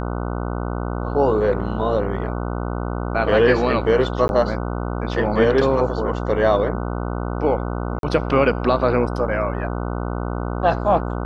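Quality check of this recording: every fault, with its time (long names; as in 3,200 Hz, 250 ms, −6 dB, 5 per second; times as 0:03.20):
mains buzz 60 Hz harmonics 25 −25 dBFS
0:04.28–0:04.29: drop-out 11 ms
0:07.99–0:08.03: drop-out 42 ms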